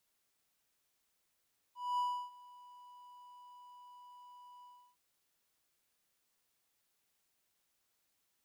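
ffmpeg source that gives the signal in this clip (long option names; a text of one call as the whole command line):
ffmpeg -f lavfi -i "aevalsrc='0.0376*(1-4*abs(mod(984*t+0.25,1)-0.5))':duration=3.215:sample_rate=44100,afade=type=in:duration=0.233,afade=type=out:start_time=0.233:duration=0.316:silence=0.0708,afade=type=out:start_time=2.89:duration=0.325" out.wav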